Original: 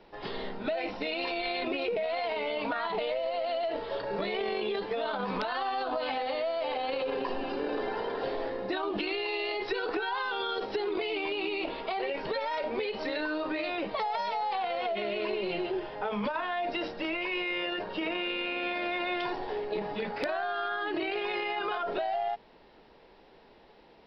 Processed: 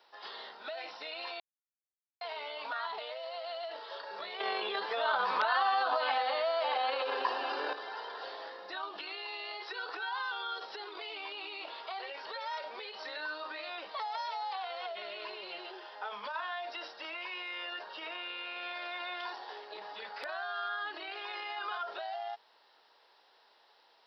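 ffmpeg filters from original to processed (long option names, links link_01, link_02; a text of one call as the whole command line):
ffmpeg -i in.wav -filter_complex "[0:a]asplit=5[link_01][link_02][link_03][link_04][link_05];[link_01]atrim=end=1.4,asetpts=PTS-STARTPTS,afade=type=out:start_time=1.396:duration=0.004:curve=hsin[link_06];[link_02]atrim=start=1.4:end=2.21,asetpts=PTS-STARTPTS,volume=0[link_07];[link_03]atrim=start=2.21:end=4.402,asetpts=PTS-STARTPTS,afade=type=in:duration=0.004:curve=hsin[link_08];[link_04]atrim=start=4.398:end=7.732,asetpts=PTS-STARTPTS,volume=9.5dB[link_09];[link_05]atrim=start=7.728[link_10];[link_06][link_07][link_08]concat=n=3:v=0:a=1[link_11];[link_11][link_09]acrossfade=duration=0.004:curve1=hsin:curve2=hsin[link_12];[link_12][link_10]acrossfade=duration=0.004:curve1=hsin:curve2=hsin,highpass=1400,equalizer=frequency=2300:width=1.6:gain=-11.5,acrossover=split=2700[link_13][link_14];[link_14]acompressor=threshold=-50dB:ratio=4:attack=1:release=60[link_15];[link_13][link_15]amix=inputs=2:normalize=0,volume=4dB" out.wav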